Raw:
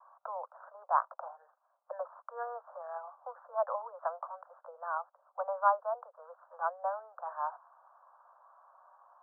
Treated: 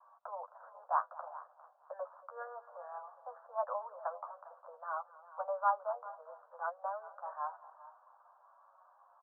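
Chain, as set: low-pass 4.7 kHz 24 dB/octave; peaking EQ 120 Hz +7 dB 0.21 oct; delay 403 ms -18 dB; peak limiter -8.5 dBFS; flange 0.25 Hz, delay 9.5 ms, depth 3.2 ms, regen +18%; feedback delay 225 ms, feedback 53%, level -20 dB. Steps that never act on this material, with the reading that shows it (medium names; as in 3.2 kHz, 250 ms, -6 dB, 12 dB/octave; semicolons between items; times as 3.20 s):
low-pass 4.7 kHz: input has nothing above 1.7 kHz; peaking EQ 120 Hz: input has nothing below 430 Hz; peak limiter -8.5 dBFS: peak at its input -15.0 dBFS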